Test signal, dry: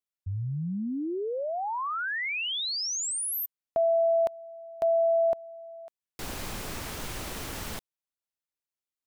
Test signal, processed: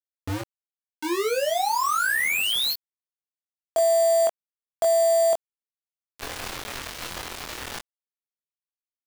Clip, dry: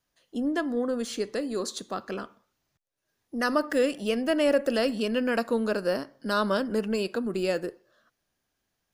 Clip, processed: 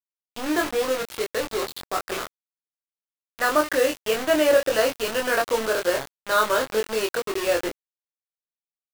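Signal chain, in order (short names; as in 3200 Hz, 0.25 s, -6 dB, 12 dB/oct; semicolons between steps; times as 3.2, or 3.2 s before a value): EQ curve 110 Hz 0 dB, 180 Hz -22 dB, 320 Hz +1 dB, 830 Hz +4 dB, 1500 Hz +6 dB, 2600 Hz +2 dB, 4100 Hz +3 dB, 7200 Hz -27 dB, 15000 Hz -26 dB; bit-crush 5-bit; doubler 23 ms -2.5 dB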